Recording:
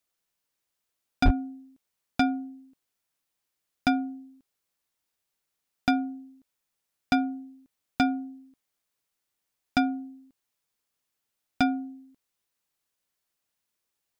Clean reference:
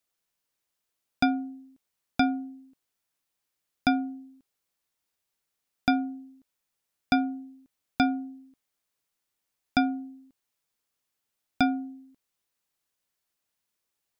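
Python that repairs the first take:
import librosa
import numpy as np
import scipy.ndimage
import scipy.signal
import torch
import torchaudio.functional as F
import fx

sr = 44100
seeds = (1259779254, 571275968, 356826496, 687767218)

y = fx.fix_declip(x, sr, threshold_db=-13.0)
y = fx.highpass(y, sr, hz=140.0, slope=24, at=(1.24, 1.36), fade=0.02)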